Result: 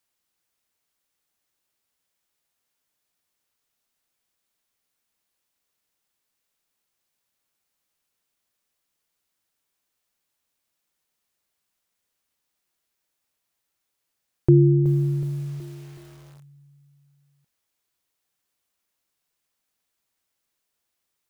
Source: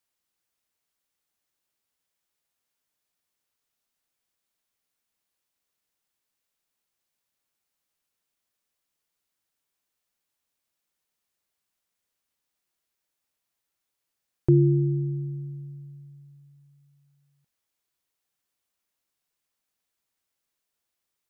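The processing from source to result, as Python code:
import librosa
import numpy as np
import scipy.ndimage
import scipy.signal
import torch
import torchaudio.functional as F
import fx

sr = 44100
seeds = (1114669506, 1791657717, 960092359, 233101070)

y = fx.echo_crushed(x, sr, ms=372, feedback_pct=55, bits=7, wet_db=-13.5)
y = y * 10.0 ** (3.5 / 20.0)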